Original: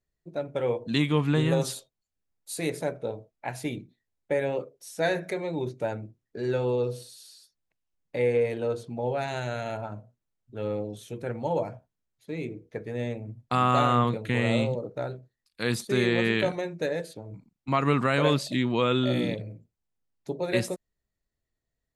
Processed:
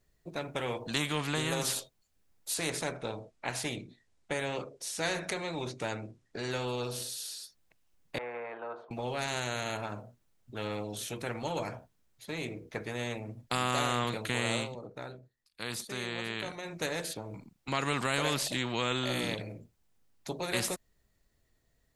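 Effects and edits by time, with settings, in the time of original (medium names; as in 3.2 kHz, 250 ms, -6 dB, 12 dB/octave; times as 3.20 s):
2.54–6.51 s: low-pass 9.5 kHz 24 dB/octave
8.18–8.91 s: Butterworth band-pass 920 Hz, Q 1.3
14.54–16.77 s: dip -12 dB, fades 0.15 s
whole clip: spectrum-flattening compressor 2:1; trim -6 dB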